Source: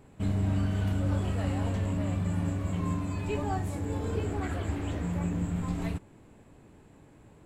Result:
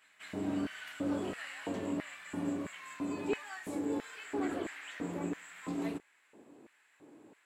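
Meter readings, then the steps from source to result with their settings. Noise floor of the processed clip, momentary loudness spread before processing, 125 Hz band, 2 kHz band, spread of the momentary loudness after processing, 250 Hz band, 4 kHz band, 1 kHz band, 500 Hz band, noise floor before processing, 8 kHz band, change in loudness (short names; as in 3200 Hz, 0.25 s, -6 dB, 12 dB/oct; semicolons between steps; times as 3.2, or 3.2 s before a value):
-69 dBFS, 4 LU, -20.5 dB, +0.5 dB, 7 LU, -4.0 dB, -1.5 dB, -6.0 dB, -2.5 dB, -56 dBFS, -3.0 dB, -7.0 dB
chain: reverse echo 0.193 s -18 dB; LFO high-pass square 1.5 Hz 310–1800 Hz; gain -3.5 dB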